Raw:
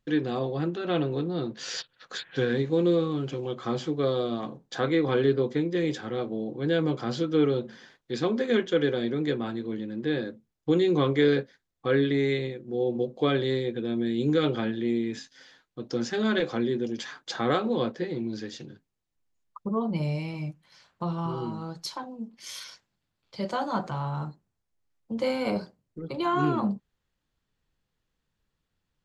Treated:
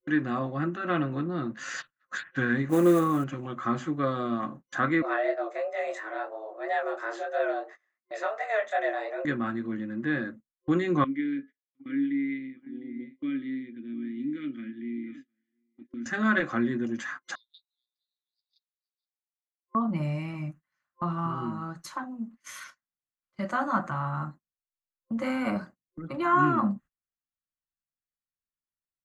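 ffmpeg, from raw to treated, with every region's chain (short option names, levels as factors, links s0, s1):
-filter_complex "[0:a]asettb=1/sr,asplit=3[s0][s1][s2];[s0]atrim=end=2.694[s3];[s1]atrim=start=2.69:end=3.24,asetpts=PTS-STARTPTS,afade=t=in:d=0.004:c=qsin,afade=t=out:st=0.546:d=0.004:c=qsin,equalizer=f=630:w=0.72:g=8.5,acrusher=bits=6:mode=log:mix=0:aa=0.000001[s4];[s2]atrim=start=3.236[s5];[s3][s4]acrossfade=d=0.004:c1=hsin:c2=qsin[s6];[s6][s5]acrossfade=d=0.004:c1=qsin:c2=hsin,asettb=1/sr,asplit=3[s7][s8][s9];[s7]atrim=end=5.024[s10];[s8]atrim=start=5.02:end=9.25,asetpts=PTS-STARTPTS,afade=t=in:d=0.004:c=qsin,afade=t=out:st=4.226:d=0.004:c=qsin,flanger=delay=19.5:depth=6.6:speed=2.9,afreqshift=220[s11];[s9]atrim=start=9.246[s12];[s10][s11]acrossfade=d=0.004:c1=hsin:c2=qsin[s13];[s13][s12]acrossfade=d=0.004:c1=qsin:c2=hsin,asettb=1/sr,asplit=3[s14][s15][s16];[s14]atrim=end=11.044[s17];[s15]atrim=start=11.04:end=16.06,asetpts=PTS-STARTPTS,afade=t=in:d=0.004:c=qsin,afade=t=out:st=5.016:d=0.004:c=qsin,asplit=3[s18][s19][s20];[s18]bandpass=f=270:t=q:w=8,volume=1[s21];[s19]bandpass=f=2290:t=q:w=8,volume=0.501[s22];[s20]bandpass=f=3010:t=q:w=8,volume=0.355[s23];[s21][s22][s23]amix=inputs=3:normalize=0,bandreject=f=425.4:t=h:w=4,bandreject=f=850.8:t=h:w=4,bandreject=f=1276.2:t=h:w=4,bandreject=f=1701.6:t=h:w=4,aecho=1:1:707:0.158,atrim=end_sample=221382[s24];[s16]atrim=start=16.056[s25];[s17][s24]acrossfade=d=0.004:c1=hsin:c2=qsin[s26];[s26][s25]acrossfade=d=0.004:c1=qsin:c2=hsin,asettb=1/sr,asplit=3[s27][s28][s29];[s27]atrim=end=17.354[s30];[s28]atrim=start=17.35:end=19.75,asetpts=PTS-STARTPTS,afade=t=in:d=0.004:c=qsin,afade=t=out:st=2.396:d=0.004:c=qsin,asuperpass=centerf=4300:order=8:qfactor=3,aecho=1:1:474:0.266,atrim=end_sample=105840[s31];[s29]atrim=start=19.746[s32];[s30][s31]acrossfade=d=0.004:c1=hsin:c2=qsin[s33];[s33][s32]acrossfade=d=0.004:c1=qsin:c2=hsin,equalizer=f=250:t=o:w=0.36:g=5,agate=range=0.0501:threshold=0.00708:ratio=16:detection=peak,superequalizer=7b=0.316:10b=2.82:11b=2.51:13b=0.398:14b=0.316,volume=0.841"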